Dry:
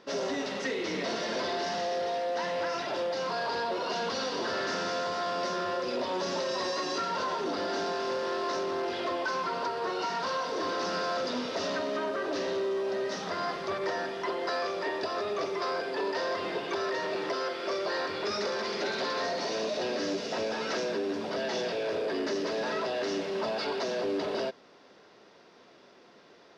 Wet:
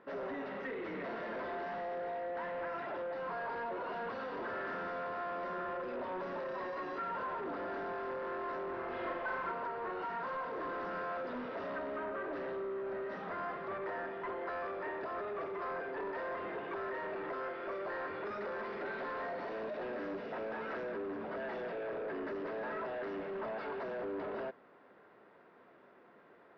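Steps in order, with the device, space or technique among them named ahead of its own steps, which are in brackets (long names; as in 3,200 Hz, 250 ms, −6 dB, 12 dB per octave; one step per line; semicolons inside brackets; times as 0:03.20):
overdriven synthesiser ladder filter (soft clipping −31 dBFS, distortion −13 dB; transistor ladder low-pass 2,200 Hz, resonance 25%)
high-shelf EQ 4,600 Hz +6 dB
0:08.70–0:09.52: flutter between parallel walls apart 6.8 metres, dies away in 0.74 s
level +1 dB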